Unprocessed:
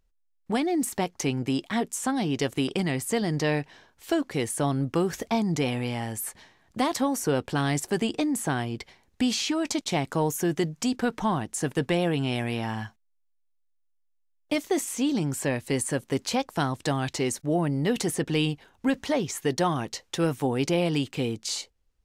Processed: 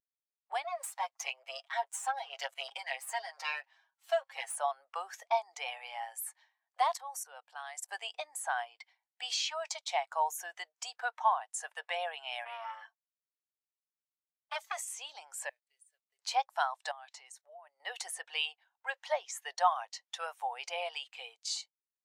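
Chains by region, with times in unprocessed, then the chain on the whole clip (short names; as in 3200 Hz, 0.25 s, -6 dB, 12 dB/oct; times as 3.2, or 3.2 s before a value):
0.64–4.56 half-wave gain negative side -12 dB + HPF 390 Hz 24 dB/oct + comb 7.4 ms, depth 98%
6.93–7.89 high shelf 9900 Hz +5.5 dB + level quantiser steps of 16 dB
12.45–14.77 comb 4.5 ms, depth 68% + core saturation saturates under 1800 Hz
15.49–16.19 level-crossing sampler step -35.5 dBFS + passive tone stack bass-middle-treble 10-0-1 + comb 4.6 ms, depth 37%
16.91–17.8 notches 50/100/150/200/250/300 Hz + compressor 12:1, threshold -33 dBFS
whole clip: steep high-pass 670 Hz 36 dB/oct; spectral expander 1.5:1; gain +1.5 dB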